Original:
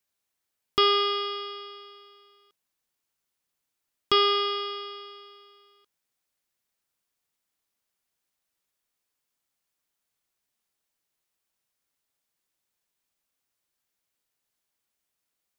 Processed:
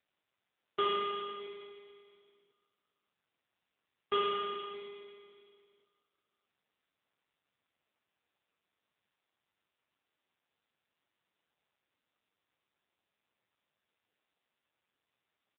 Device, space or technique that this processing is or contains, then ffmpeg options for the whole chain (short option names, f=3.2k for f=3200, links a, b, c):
satellite phone: -af "highpass=330,lowpass=3.3k,aecho=1:1:616:0.119,volume=-6dB" -ar 8000 -c:a libopencore_amrnb -b:a 5900